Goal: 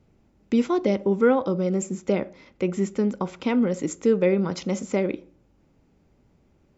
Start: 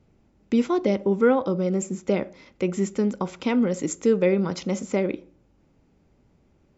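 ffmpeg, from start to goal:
-filter_complex "[0:a]asettb=1/sr,asplit=3[a][b][c];[a]atrim=end=2.124[d];[b]atrim=start=2.12:end=4.53,asetpts=PTS-STARTPTS,afade=t=in:d=0.004:c=qsin,afade=t=out:st=2.406:d=0.004:c=qsin,highshelf=f=5.3k:g=-6[e];[c]atrim=start=4.526[f];[d][e]acrossfade=d=0.004:c1=hsin:c2=qsin[g];[g][f]acrossfade=d=0.004:c1=qsin:c2=hsin"

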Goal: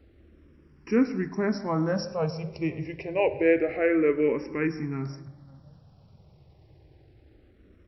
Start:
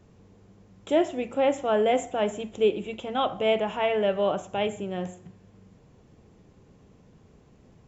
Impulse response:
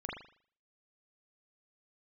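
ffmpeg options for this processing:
-filter_complex "[0:a]asplit=2[a][b];[b]adelay=541,lowpass=f=1.4k:p=1,volume=-22dB,asplit=2[c][d];[d]adelay=541,lowpass=f=1.4k:p=1,volume=0.24[e];[a][c][e]amix=inputs=3:normalize=0,asetrate=33038,aresample=44100,atempo=1.33484,asplit=2[f][g];[1:a]atrim=start_sample=2205,asetrate=34398,aresample=44100,adelay=104[h];[g][h]afir=irnorm=-1:irlink=0,volume=-19dB[i];[f][i]amix=inputs=2:normalize=0,asplit=2[j][k];[k]afreqshift=-0.27[l];[j][l]amix=inputs=2:normalize=1,volume=3dB"

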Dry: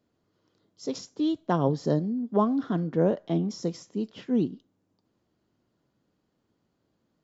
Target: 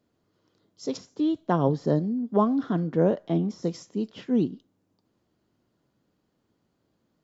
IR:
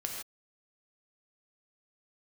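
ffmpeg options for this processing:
-filter_complex "[0:a]asettb=1/sr,asplit=3[a][b][c];[a]atrim=end=0.974[d];[b]atrim=start=0.97:end=3.64,asetpts=PTS-STARTPTS,afade=t=in:d=0.004:c=qsin,afade=t=out:st=2.666:d=0.004:c=qsin,acrossover=split=2800[e][f];[f]acompressor=threshold=-52dB:ratio=4:attack=1:release=60[g];[e][g]amix=inputs=2:normalize=0[h];[c]atrim=start=3.636[i];[d][h]acrossfade=d=0.004:c1=hsin:c2=qsin[j];[j][i]acrossfade=d=0.004:c1=qsin:c2=hsin,volume=1.5dB"

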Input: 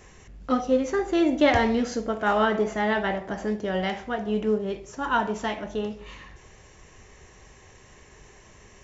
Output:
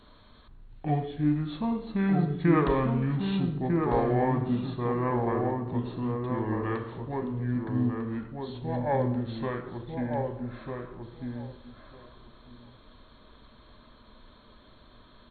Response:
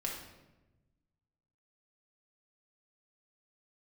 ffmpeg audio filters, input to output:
-filter_complex "[0:a]asplit=2[a][b];[b]adelay=720,lowpass=f=2k:p=1,volume=-3.5dB,asplit=2[c][d];[d]adelay=720,lowpass=f=2k:p=1,volume=0.17,asplit=2[e][f];[f]adelay=720,lowpass=f=2k:p=1,volume=0.17[g];[a][c][e][g]amix=inputs=4:normalize=0,asetrate=25442,aresample=44100,volume=-4.5dB"

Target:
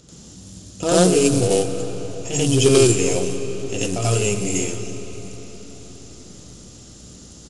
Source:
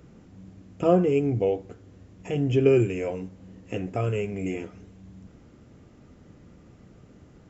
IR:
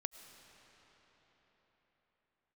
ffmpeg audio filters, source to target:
-filter_complex "[0:a]aeval=exprs='val(0)+0.00178*(sin(2*PI*60*n/s)+sin(2*PI*2*60*n/s)/2+sin(2*PI*3*60*n/s)/3+sin(2*PI*4*60*n/s)/4+sin(2*PI*5*60*n/s)/5)':c=same,acrusher=bits=8:mode=log:mix=0:aa=0.000001,aeval=exprs='0.211*(cos(1*acos(clip(val(0)/0.211,-1,1)))-cos(1*PI/2))+0.00473*(cos(8*acos(clip(val(0)/0.211,-1,1)))-cos(8*PI/2))':c=same,aexciter=amount=3.8:drive=9.1:freq=3.2k,asplit=2[a][b];[1:a]atrim=start_sample=2205,highshelf=f=5.5k:g=9,adelay=88[c];[b][c]afir=irnorm=-1:irlink=0,volume=7dB[d];[a][d]amix=inputs=2:normalize=0,aresample=22050,aresample=44100"

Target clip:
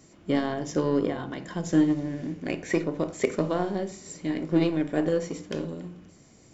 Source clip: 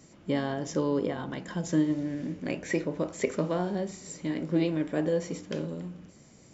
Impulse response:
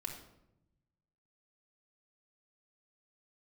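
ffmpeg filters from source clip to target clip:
-filter_complex "[0:a]aeval=exprs='0.251*(cos(1*acos(clip(val(0)/0.251,-1,1)))-cos(1*PI/2))+0.00891*(cos(5*acos(clip(val(0)/0.251,-1,1)))-cos(5*PI/2))+0.0158*(cos(7*acos(clip(val(0)/0.251,-1,1)))-cos(7*PI/2))':c=same,asplit=2[a][b];[1:a]atrim=start_sample=2205,afade=t=out:st=0.16:d=0.01,atrim=end_sample=7497[c];[b][c]afir=irnorm=-1:irlink=0,volume=-4dB[d];[a][d]amix=inputs=2:normalize=0"

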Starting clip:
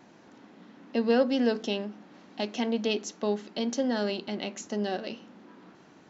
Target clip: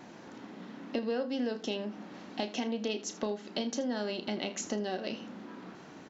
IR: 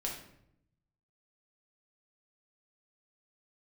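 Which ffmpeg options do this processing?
-af "acompressor=threshold=-36dB:ratio=6,aecho=1:1:32|79:0.266|0.141,volume=5dB"

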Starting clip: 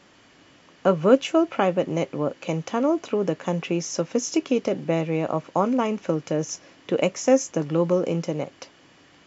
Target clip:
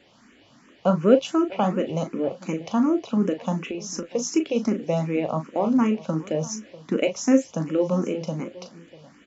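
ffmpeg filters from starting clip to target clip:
-filter_complex "[0:a]equalizer=f=220:t=o:w=0.37:g=10.5,asettb=1/sr,asplit=3[a][b][c];[a]atrim=end=3.584[d];[b]atrim=start=3.58:end=4.13,asetpts=PTS-STARTPTS,afade=t=in:d=0.004:c=qsin,afade=t=out:st=0.546:d=0.004:c=qsin,acompressor=threshold=-25dB:ratio=6[e];[c]atrim=start=4.126[f];[d][e]acrossfade=d=0.004:c1=hsin:c2=qsin[g];[g][f]acrossfade=d=0.004:c1=qsin:c2=hsin,asplit=2[h][i];[i]adelay=38,volume=-8.5dB[j];[h][j]amix=inputs=2:normalize=0,aecho=1:1:644:0.112,asplit=2[k][l];[l]afreqshift=2.7[m];[k][m]amix=inputs=2:normalize=1"

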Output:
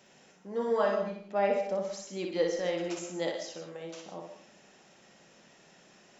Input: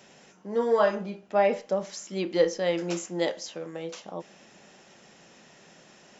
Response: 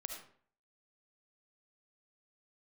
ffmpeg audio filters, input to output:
-filter_complex "[0:a]asplit=2[a][b];[1:a]atrim=start_sample=2205,adelay=60[c];[b][c]afir=irnorm=-1:irlink=0,volume=-0.5dB[d];[a][d]amix=inputs=2:normalize=0,volume=-6.5dB"

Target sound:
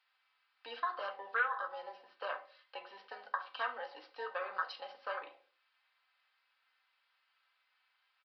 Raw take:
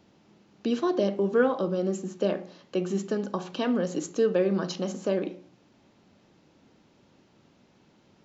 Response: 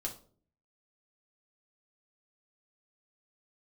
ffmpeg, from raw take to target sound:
-filter_complex "[0:a]afwtdn=0.0282,highpass=f=1.3k:w=0.5412,highpass=f=1.3k:w=1.3066,highshelf=f=2.7k:g=-10.5,aecho=1:1:3.9:0.53,acompressor=threshold=-46dB:ratio=3,asplit=2[a][b];[1:a]atrim=start_sample=2205,afade=t=out:st=0.34:d=0.01,atrim=end_sample=15435[c];[b][c]afir=irnorm=-1:irlink=0,volume=0dB[d];[a][d]amix=inputs=2:normalize=0,aresample=11025,aresample=44100,volume=8.5dB"

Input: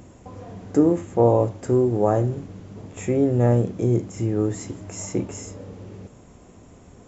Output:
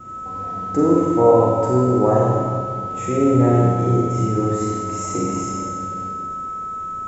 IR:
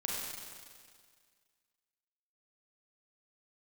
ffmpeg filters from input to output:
-filter_complex "[0:a]aeval=exprs='val(0)+0.02*sin(2*PI*1300*n/s)':c=same,adynamicequalizer=threshold=0.00447:dfrequency=980:dqfactor=7.6:tfrequency=980:tqfactor=7.6:attack=5:release=100:ratio=0.375:range=3:mode=boostabove:tftype=bell[a];[1:a]atrim=start_sample=2205[b];[a][b]afir=irnorm=-1:irlink=0"

